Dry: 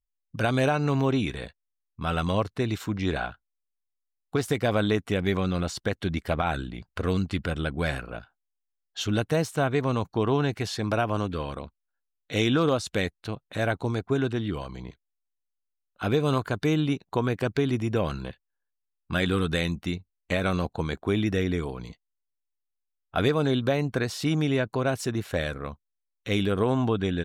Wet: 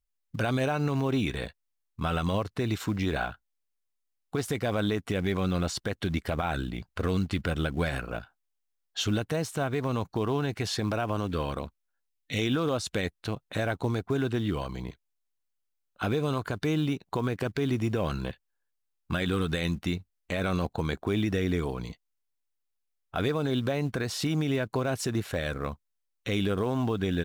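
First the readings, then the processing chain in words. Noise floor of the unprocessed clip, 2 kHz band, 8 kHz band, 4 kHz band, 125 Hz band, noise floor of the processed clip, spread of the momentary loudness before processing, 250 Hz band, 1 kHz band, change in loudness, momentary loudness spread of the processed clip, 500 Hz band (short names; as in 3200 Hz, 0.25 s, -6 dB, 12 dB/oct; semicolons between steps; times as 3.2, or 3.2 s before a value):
-82 dBFS, -3.0 dB, 0.0 dB, -2.0 dB, -2.0 dB, -79 dBFS, 12 LU, -2.5 dB, -3.0 dB, -3.0 dB, 8 LU, -3.5 dB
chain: in parallel at -10 dB: short-mantissa float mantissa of 2-bit; on the sum: spectral gain 12.08–12.38, 290–1800 Hz -9 dB; compressor 2:1, threshold -25 dBFS, peak gain reduction 5.5 dB; limiter -18 dBFS, peak gain reduction 7 dB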